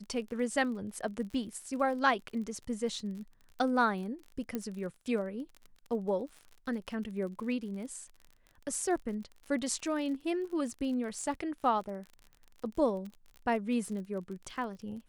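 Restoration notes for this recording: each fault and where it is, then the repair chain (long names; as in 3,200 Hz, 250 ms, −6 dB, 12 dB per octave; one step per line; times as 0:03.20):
surface crackle 41 per second −41 dBFS
0:04.55: click −21 dBFS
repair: click removal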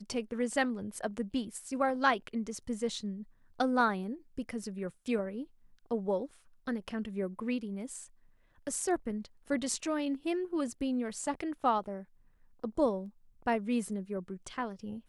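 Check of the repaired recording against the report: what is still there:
none of them is left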